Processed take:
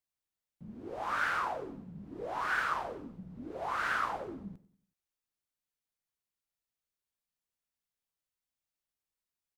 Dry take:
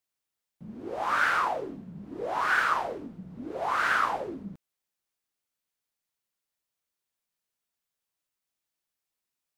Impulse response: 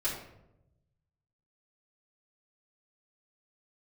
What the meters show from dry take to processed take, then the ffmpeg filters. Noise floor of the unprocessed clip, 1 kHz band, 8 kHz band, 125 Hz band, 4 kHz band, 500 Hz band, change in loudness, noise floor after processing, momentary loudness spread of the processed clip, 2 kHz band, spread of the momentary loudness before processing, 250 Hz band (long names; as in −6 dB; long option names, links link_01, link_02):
below −85 dBFS, −7.0 dB, −7.0 dB, −3.0 dB, −7.0 dB, −6.5 dB, −7.0 dB, below −85 dBFS, 16 LU, −7.0 dB, 18 LU, −5.0 dB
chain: -filter_complex "[0:a]lowshelf=frequency=120:gain=9.5,asplit=2[link_01][link_02];[link_02]aecho=0:1:94|188|282|376:0.119|0.0523|0.023|0.0101[link_03];[link_01][link_03]amix=inputs=2:normalize=0,volume=-7dB"